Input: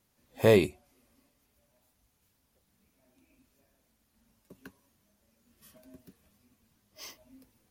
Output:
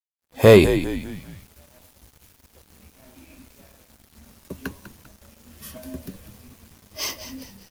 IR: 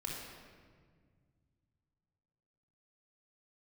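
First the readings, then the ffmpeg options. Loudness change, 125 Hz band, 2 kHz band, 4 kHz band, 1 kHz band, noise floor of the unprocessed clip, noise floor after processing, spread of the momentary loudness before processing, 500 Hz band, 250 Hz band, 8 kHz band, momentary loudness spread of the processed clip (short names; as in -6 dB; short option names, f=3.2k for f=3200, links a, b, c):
+7.5 dB, +12.0 dB, +10.5 dB, +12.0 dB, +10.5 dB, -74 dBFS, -61 dBFS, 9 LU, +10.5 dB, +11.0 dB, +14.0 dB, 24 LU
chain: -filter_complex "[0:a]equalizer=f=76:t=o:w=0.38:g=10,dynaudnorm=f=130:g=5:m=13.5dB,asplit=5[a][b][c][d][e];[b]adelay=198,afreqshift=-69,volume=-12dB[f];[c]adelay=396,afreqshift=-138,volume=-19.3dB[g];[d]adelay=594,afreqshift=-207,volume=-26.7dB[h];[e]adelay=792,afreqshift=-276,volume=-34dB[i];[a][f][g][h][i]amix=inputs=5:normalize=0,acontrast=26,acrusher=bits=7:mix=0:aa=0.5,volume=-1dB"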